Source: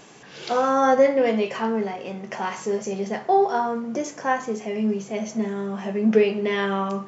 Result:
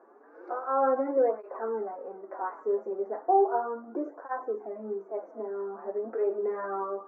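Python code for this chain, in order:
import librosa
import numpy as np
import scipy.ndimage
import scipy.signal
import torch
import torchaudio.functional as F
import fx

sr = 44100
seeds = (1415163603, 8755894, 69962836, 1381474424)

y = scipy.signal.sosfilt(scipy.signal.ellip(3, 1.0, 40, [310.0, 1400.0], 'bandpass', fs=sr, output='sos'), x)
y = fx.low_shelf(y, sr, hz=480.0, db=4.5)
y = fx.flanger_cancel(y, sr, hz=0.35, depth_ms=6.9)
y = y * librosa.db_to_amplitude(-4.0)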